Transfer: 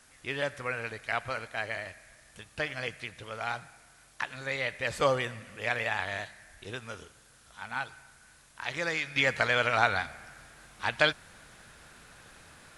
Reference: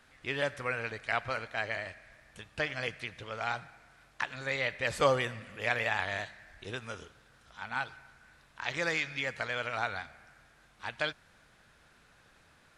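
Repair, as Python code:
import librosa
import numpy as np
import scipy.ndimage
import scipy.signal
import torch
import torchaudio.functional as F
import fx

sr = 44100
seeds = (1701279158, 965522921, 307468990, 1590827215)

y = fx.noise_reduce(x, sr, print_start_s=8.07, print_end_s=8.57, reduce_db=6.0)
y = fx.gain(y, sr, db=fx.steps((0.0, 0.0), (9.16, -8.5)))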